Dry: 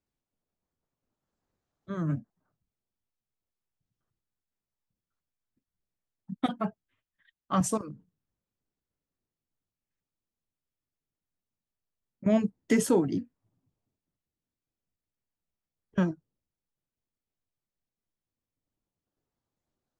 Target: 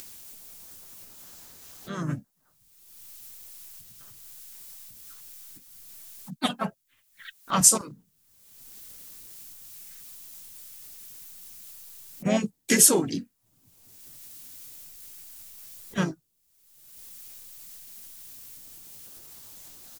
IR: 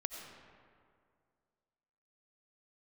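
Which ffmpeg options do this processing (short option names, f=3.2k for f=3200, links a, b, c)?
-filter_complex "[0:a]acompressor=mode=upward:threshold=-37dB:ratio=2.5,crystalizer=i=9:c=0,asplit=3[a][b][c];[b]asetrate=37084,aresample=44100,atempo=1.18921,volume=-7dB[d];[c]asetrate=52444,aresample=44100,atempo=0.840896,volume=-11dB[e];[a][d][e]amix=inputs=3:normalize=0,volume=-2.5dB"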